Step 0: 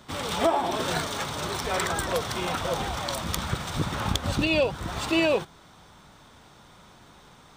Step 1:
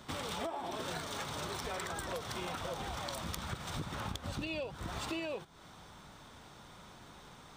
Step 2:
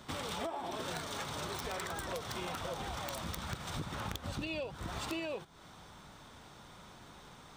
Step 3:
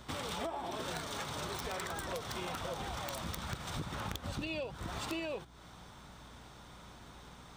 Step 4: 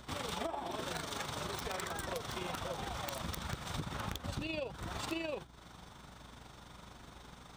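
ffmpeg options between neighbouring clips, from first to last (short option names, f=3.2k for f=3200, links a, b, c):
-af "acompressor=threshold=-35dB:ratio=6,volume=-2dB"
-af "aeval=exprs='(mod(22.4*val(0)+1,2)-1)/22.4':c=same"
-af "aeval=exprs='val(0)+0.00126*(sin(2*PI*60*n/s)+sin(2*PI*2*60*n/s)/2+sin(2*PI*3*60*n/s)/3+sin(2*PI*4*60*n/s)/4+sin(2*PI*5*60*n/s)/5)':c=same"
-af "tremolo=f=24:d=0.519,volume=2dB"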